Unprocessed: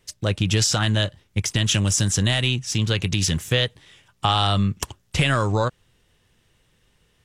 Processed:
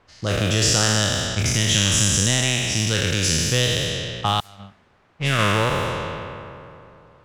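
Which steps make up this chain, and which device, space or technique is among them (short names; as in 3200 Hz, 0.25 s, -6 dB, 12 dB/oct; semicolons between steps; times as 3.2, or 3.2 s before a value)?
spectral trails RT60 2.87 s; 4.4–5.39 gate -13 dBFS, range -38 dB; cassette deck with a dynamic noise filter (white noise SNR 27 dB; low-pass opened by the level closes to 1300 Hz, open at -15 dBFS); gain -3 dB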